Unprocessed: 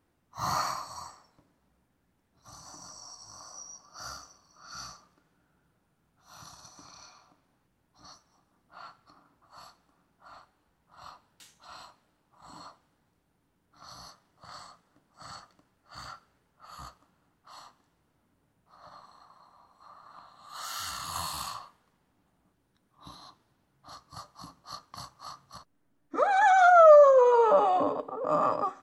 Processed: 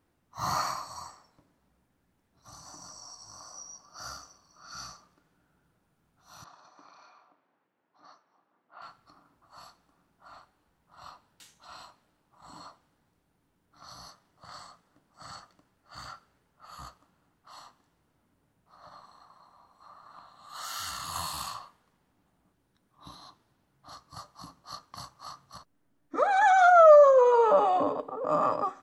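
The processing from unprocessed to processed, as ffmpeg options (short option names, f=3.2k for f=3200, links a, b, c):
-filter_complex "[0:a]asettb=1/sr,asplit=3[a][b][c];[a]atrim=end=6.444[d];[b]atrim=start=6.44:end=8.82,asetpts=PTS-STARTPTS,afade=t=in:d=0.004:c=qsin,afade=t=out:st=2.376:d=0.004:c=qsin,highpass=340,lowpass=2.4k[e];[c]atrim=start=8.816[f];[d][e]acrossfade=d=0.004:c1=hsin:c2=qsin[g];[g][f]acrossfade=d=0.004:c1=qsin:c2=hsin"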